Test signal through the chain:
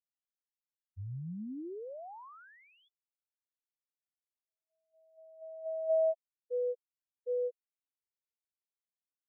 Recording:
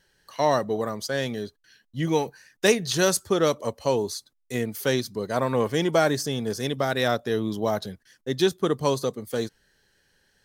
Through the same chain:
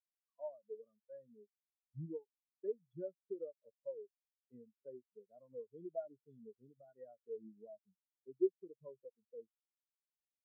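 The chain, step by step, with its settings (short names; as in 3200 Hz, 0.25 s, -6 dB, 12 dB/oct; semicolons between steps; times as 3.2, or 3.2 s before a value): brick-wall FIR low-pass 3500 Hz; compressor 2.5:1, threshold -44 dBFS; spectral expander 4:1; gain +1.5 dB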